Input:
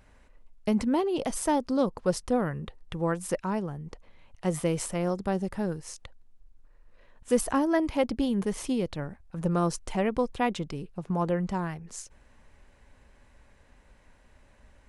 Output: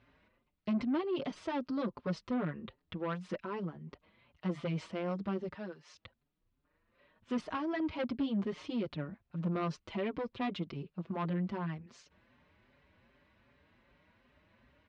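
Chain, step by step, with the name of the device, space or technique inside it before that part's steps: 5.53–5.95 HPF 790 Hz 6 dB/oct; barber-pole flanger into a guitar amplifier (endless flanger 5.4 ms +2.6 Hz; soft clip -26.5 dBFS, distortion -12 dB; speaker cabinet 110–4100 Hz, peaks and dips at 480 Hz -5 dB, 800 Hz -7 dB, 1700 Hz -3 dB)

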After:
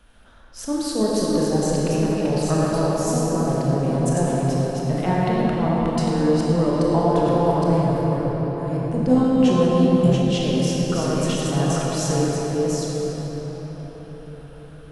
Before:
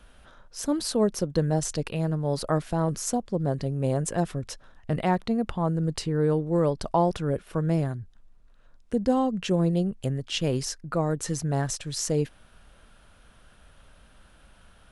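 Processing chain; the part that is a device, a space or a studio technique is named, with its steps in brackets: reverse delay 0.516 s, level -2.5 dB; cathedral (reverb RT60 5.7 s, pre-delay 22 ms, DRR -5 dB); 9.07–10.22 doubler 16 ms -3.5 dB; gain -2 dB

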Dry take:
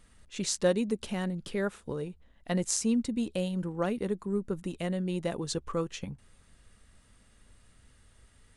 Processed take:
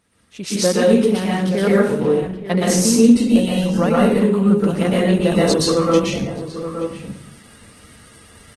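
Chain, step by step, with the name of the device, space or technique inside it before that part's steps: notch 7200 Hz, Q 7.9; 3.21–4.85 dynamic EQ 350 Hz, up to -7 dB, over -47 dBFS, Q 3.8; outdoor echo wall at 150 m, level -11 dB; far-field microphone of a smart speaker (reverb RT60 0.60 s, pre-delay 0.112 s, DRR -5.5 dB; HPF 110 Hz 12 dB/oct; AGC gain up to 13 dB; Opus 16 kbps 48000 Hz)

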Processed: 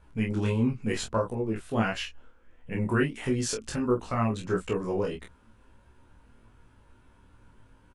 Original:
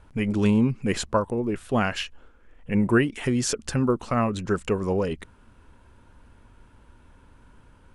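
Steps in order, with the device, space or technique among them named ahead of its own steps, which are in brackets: double-tracked vocal (doubler 27 ms -4 dB; chorus 1.5 Hz, delay 16 ms, depth 3.2 ms); gain -2.5 dB

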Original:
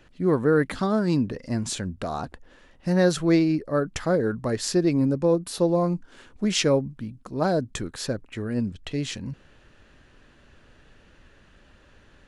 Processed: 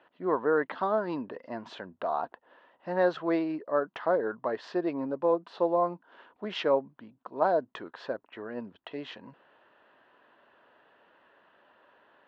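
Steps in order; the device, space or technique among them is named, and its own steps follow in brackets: phone earpiece (speaker cabinet 430–3000 Hz, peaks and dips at 670 Hz +5 dB, 970 Hz +8 dB, 2300 Hz -8 dB); gain -3 dB

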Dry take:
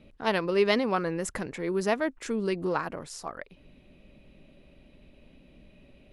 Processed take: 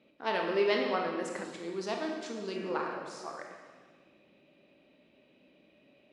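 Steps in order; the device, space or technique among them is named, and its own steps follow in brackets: supermarket ceiling speaker (BPF 280–6100 Hz; reverb RT60 1.6 s, pre-delay 20 ms, DRR 0.5 dB); 1.44–2.56 graphic EQ 500/2000/4000 Hz -5/-8/+7 dB; gain -6 dB

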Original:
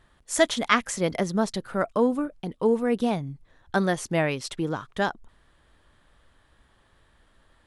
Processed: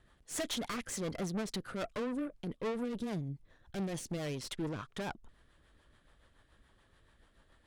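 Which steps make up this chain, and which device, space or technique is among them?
overdriven rotary cabinet (tube stage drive 32 dB, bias 0.55; rotary speaker horn 7 Hz); 2.84–4.37 dynamic EQ 1300 Hz, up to -6 dB, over -56 dBFS, Q 0.84

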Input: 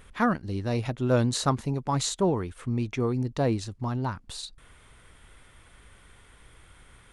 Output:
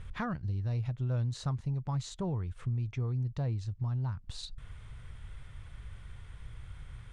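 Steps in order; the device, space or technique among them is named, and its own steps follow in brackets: jukebox (LPF 6900 Hz 12 dB/oct; resonant low shelf 180 Hz +12 dB, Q 1.5; compressor 3:1, threshold -32 dBFS, peak gain reduction 15.5 dB); gain -3 dB

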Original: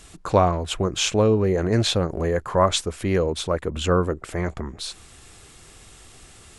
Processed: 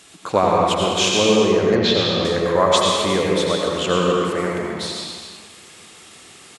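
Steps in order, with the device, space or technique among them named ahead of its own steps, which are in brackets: stadium PA (HPF 180 Hz 12 dB/oct; bell 3200 Hz +4 dB 1.5 oct; loudspeakers at several distances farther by 69 m -11 dB, 89 m -10 dB; reverb RT60 1.7 s, pre-delay 78 ms, DRR -2 dB); 1.75–2.25 LPF 5200 Hz 24 dB/oct

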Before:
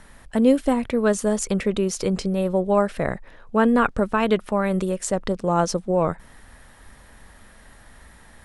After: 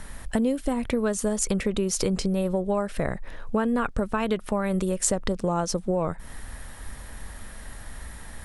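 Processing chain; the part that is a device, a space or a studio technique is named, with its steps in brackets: ASMR close-microphone chain (low shelf 100 Hz +7.5 dB; compressor 6:1, threshold -26 dBFS, peak gain reduction 14.5 dB; high shelf 6900 Hz +7.5 dB); gain +4 dB

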